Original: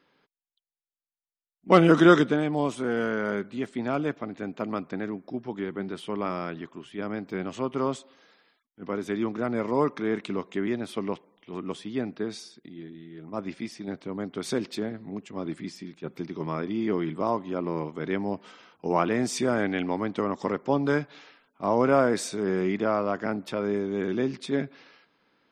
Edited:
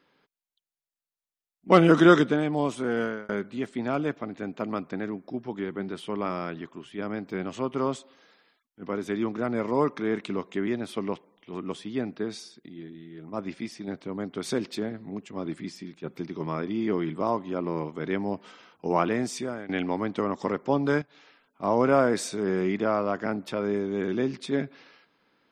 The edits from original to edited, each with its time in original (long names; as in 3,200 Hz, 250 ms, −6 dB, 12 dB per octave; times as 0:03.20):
0:03.02–0:03.29: fade out
0:19.07–0:19.69: fade out, to −18 dB
0:21.02–0:21.73: fade in equal-power, from −13.5 dB